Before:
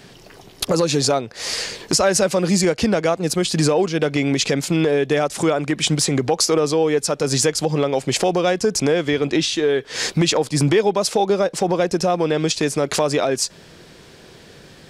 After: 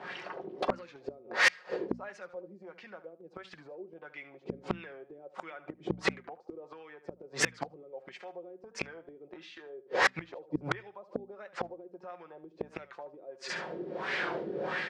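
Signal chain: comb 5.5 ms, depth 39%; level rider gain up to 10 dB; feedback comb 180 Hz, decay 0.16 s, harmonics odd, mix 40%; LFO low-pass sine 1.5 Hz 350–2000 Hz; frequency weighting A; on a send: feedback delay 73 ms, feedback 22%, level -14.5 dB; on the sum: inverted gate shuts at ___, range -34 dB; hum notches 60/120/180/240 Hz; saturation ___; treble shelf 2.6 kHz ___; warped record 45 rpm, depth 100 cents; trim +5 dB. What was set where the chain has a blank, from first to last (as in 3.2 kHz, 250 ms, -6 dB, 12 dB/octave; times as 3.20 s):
-17 dBFS, -23 dBFS, +9 dB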